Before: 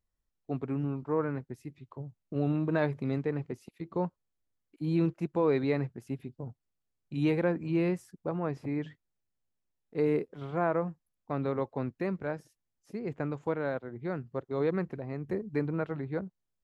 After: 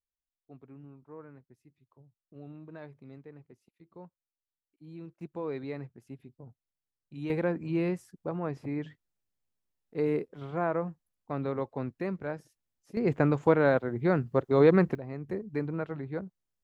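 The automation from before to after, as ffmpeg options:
ffmpeg -i in.wav -af "asetnsamples=nb_out_samples=441:pad=0,asendcmd='5.21 volume volume -9dB;7.3 volume volume -1dB;12.97 volume volume 9dB;14.95 volume volume -1.5dB',volume=-17.5dB" out.wav

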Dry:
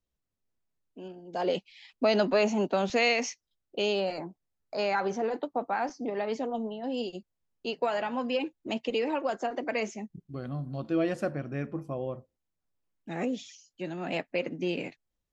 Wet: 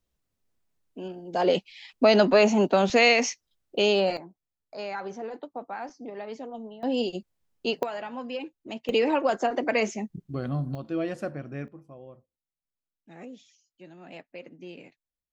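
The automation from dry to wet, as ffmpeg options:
ffmpeg -i in.wav -af "asetnsamples=nb_out_samples=441:pad=0,asendcmd='4.17 volume volume -6dB;6.83 volume volume 6dB;7.83 volume volume -4.5dB;8.89 volume volume 6dB;10.75 volume volume -2dB;11.68 volume volume -12dB',volume=6dB" out.wav

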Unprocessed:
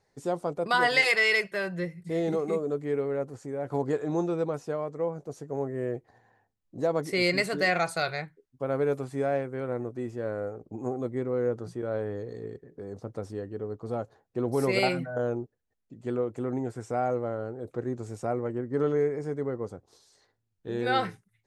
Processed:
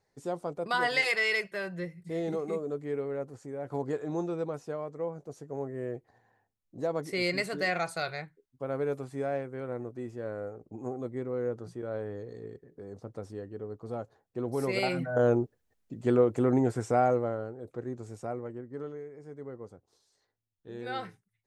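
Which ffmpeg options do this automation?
ffmpeg -i in.wav -af "volume=14dB,afade=type=in:start_time=14.87:duration=0.44:silence=0.298538,afade=type=out:start_time=16.74:duration=0.8:silence=0.281838,afade=type=out:start_time=18.16:duration=0.89:silence=0.223872,afade=type=in:start_time=19.05:duration=0.48:silence=0.398107" out.wav

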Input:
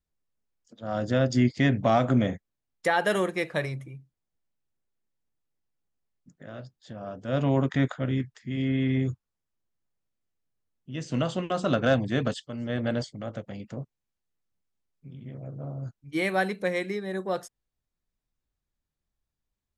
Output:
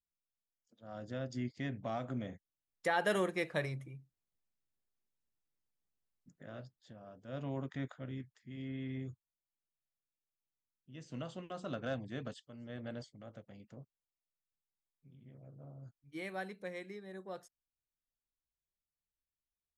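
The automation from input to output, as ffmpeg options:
ffmpeg -i in.wav -af "volume=-7dB,afade=type=in:start_time=2.26:duration=0.84:silence=0.316228,afade=type=out:start_time=6.57:duration=0.46:silence=0.354813" out.wav

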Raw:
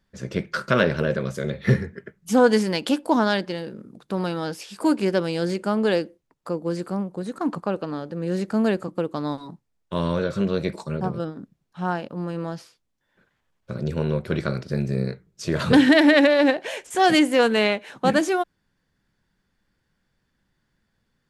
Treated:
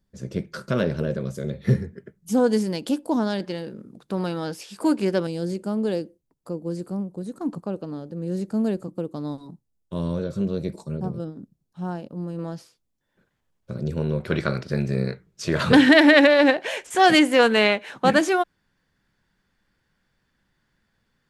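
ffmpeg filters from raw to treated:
ffmpeg -i in.wav -af "asetnsamples=nb_out_samples=441:pad=0,asendcmd='3.4 equalizer g -3;5.27 equalizer g -13.5;12.39 equalizer g -6.5;14.2 equalizer g 3.5',equalizer=frequency=1800:width_type=o:width=2.9:gain=-10.5" out.wav

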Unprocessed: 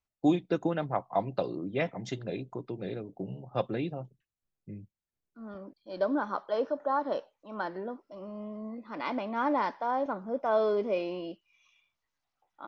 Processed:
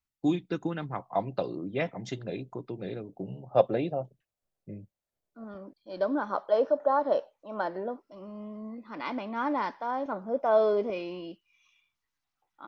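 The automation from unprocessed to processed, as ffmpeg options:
ffmpeg -i in.wav -af "asetnsamples=nb_out_samples=441:pad=0,asendcmd='0.99 equalizer g 0;3.5 equalizer g 11.5;5.44 equalizer g 0.5;6.3 equalizer g 7;7.99 equalizer g -3.5;10.12 equalizer g 4.5;10.9 equalizer g -7',equalizer=frequency=610:width_type=o:width=0.86:gain=-9.5" out.wav

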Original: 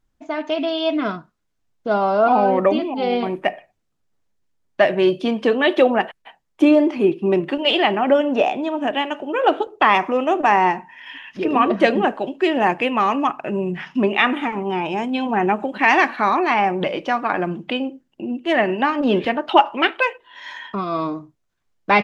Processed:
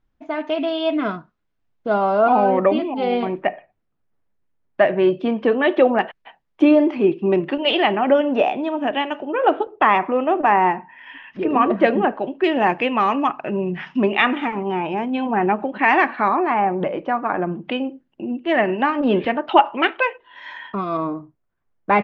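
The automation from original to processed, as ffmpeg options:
ffmpeg -i in.wav -af "asetnsamples=nb_out_samples=441:pad=0,asendcmd='3.42 lowpass f 2200;5.99 lowpass f 3500;9.25 lowpass f 2200;12.44 lowpass f 4200;14.72 lowpass f 2400;16.28 lowpass f 1500;17.65 lowpass f 2900;20.97 lowpass f 1700',lowpass=3300" out.wav

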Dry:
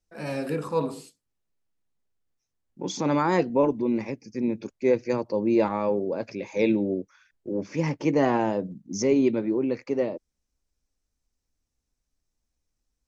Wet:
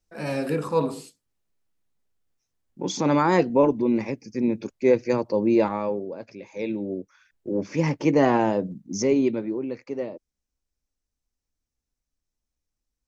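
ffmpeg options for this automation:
ffmpeg -i in.wav -af "volume=13dB,afade=type=out:start_time=5.44:duration=0.72:silence=0.316228,afade=type=in:start_time=6.68:duration=0.89:silence=0.316228,afade=type=out:start_time=8.74:duration=0.9:silence=0.421697" out.wav

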